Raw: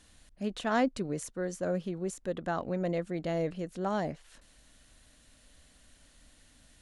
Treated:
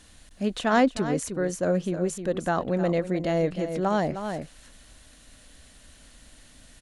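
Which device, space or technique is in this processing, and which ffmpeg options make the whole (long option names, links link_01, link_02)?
ducked delay: -filter_complex "[0:a]asplit=3[link_01][link_02][link_03];[link_02]adelay=309,volume=-5dB[link_04];[link_03]apad=whole_len=314094[link_05];[link_04][link_05]sidechaincompress=threshold=-36dB:ratio=5:attack=32:release=490[link_06];[link_01][link_06]amix=inputs=2:normalize=0,volume=7dB"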